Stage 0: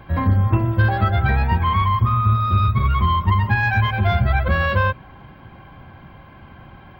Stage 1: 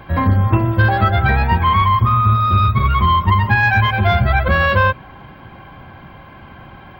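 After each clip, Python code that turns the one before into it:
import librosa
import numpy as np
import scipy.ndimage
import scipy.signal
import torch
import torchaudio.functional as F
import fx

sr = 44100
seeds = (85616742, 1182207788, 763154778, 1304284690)

y = fx.low_shelf(x, sr, hz=220.0, db=-4.5)
y = y * 10.0 ** (6.0 / 20.0)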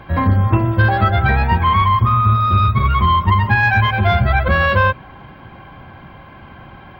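y = fx.high_shelf(x, sr, hz=8800.0, db=-6.0)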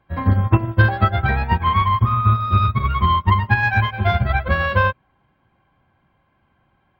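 y = fx.upward_expand(x, sr, threshold_db=-27.0, expansion=2.5)
y = y * 10.0 ** (1.5 / 20.0)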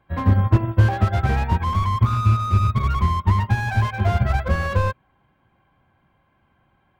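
y = fx.slew_limit(x, sr, full_power_hz=66.0)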